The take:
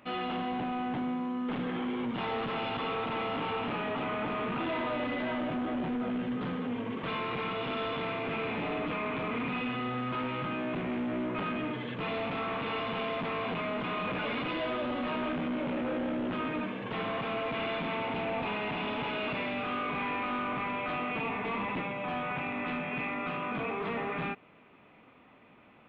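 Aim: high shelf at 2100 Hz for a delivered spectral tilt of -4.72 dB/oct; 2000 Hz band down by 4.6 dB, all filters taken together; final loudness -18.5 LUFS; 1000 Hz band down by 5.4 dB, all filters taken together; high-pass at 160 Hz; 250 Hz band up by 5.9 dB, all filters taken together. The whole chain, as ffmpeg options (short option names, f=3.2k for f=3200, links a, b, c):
-af "highpass=160,equalizer=f=250:t=o:g=7.5,equalizer=f=1k:t=o:g=-6.5,equalizer=f=2k:t=o:g=-6.5,highshelf=f=2.1k:g=3,volume=13dB"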